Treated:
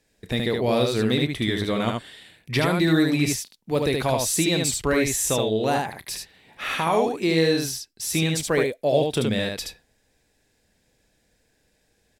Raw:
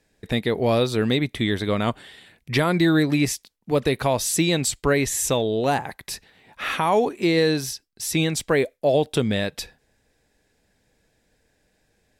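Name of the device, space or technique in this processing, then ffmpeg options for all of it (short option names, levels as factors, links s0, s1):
exciter from parts: -filter_complex "[0:a]aecho=1:1:32|74:0.178|0.668,asplit=2[s0][s1];[s1]highpass=2000,asoftclip=type=tanh:threshold=0.0299,volume=0.473[s2];[s0][s2]amix=inputs=2:normalize=0,volume=0.75"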